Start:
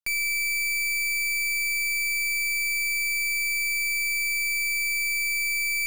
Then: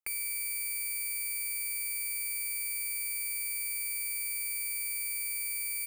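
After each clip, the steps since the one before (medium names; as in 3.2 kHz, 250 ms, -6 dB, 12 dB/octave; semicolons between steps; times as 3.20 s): high-pass 220 Hz 6 dB/octave; high-order bell 4.6 kHz -12.5 dB 1.2 oct; comb 2.4 ms, depth 77%; trim -3.5 dB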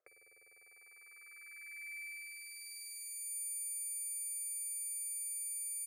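upward compressor, threshold -55 dBFS; band-pass sweep 570 Hz -> 7.8 kHz, 0.40–3.36 s; static phaser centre 880 Hz, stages 6; trim +1.5 dB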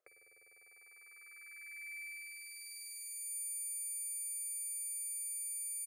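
feedback delay 60 ms, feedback 55%, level -19 dB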